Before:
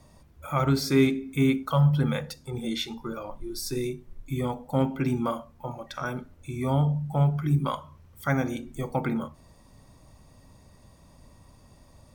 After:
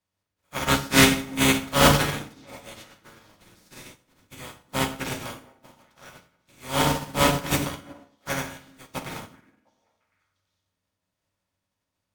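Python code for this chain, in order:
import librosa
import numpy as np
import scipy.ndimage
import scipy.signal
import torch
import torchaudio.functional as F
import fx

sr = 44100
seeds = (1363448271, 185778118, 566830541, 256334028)

y = fx.spec_flatten(x, sr, power=0.24)
y = fx.lowpass(y, sr, hz=4000.0, slope=6)
y = fx.peak_eq(y, sr, hz=99.0, db=9.0, octaves=0.49)
y = fx.echo_stepped(y, sr, ms=352, hz=250.0, octaves=1.4, feedback_pct=70, wet_db=-6)
y = fx.rev_fdn(y, sr, rt60_s=1.1, lf_ratio=1.25, hf_ratio=0.7, size_ms=32.0, drr_db=0.5)
y = fx.upward_expand(y, sr, threshold_db=-40.0, expansion=2.5)
y = y * librosa.db_to_amplitude(5.0)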